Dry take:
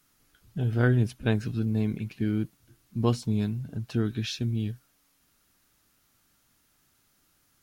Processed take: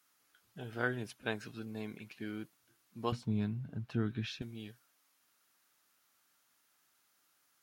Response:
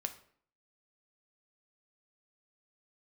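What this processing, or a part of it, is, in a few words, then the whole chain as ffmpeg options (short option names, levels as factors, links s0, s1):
filter by subtraction: -filter_complex "[0:a]asplit=2[s0][s1];[s1]lowpass=1000,volume=-1[s2];[s0][s2]amix=inputs=2:normalize=0,asettb=1/sr,asplit=3[s3][s4][s5];[s3]atrim=end=3.124[s6];[s4]atrim=start=3.12:end=4.42,asetpts=PTS-STARTPTS,afade=t=in:d=0.004:c=qsin,afade=t=out:st=1.296:d=0.004:c=qsin,bass=f=250:g=15,treble=f=4000:g=-11[s7];[s5]atrim=start=4.416[s8];[s6][s7]acrossfade=d=0.004:c1=hsin:c2=qsin[s9];[s9][s8]acrossfade=d=0.004:c1=qsin:c2=hsin,volume=0.531"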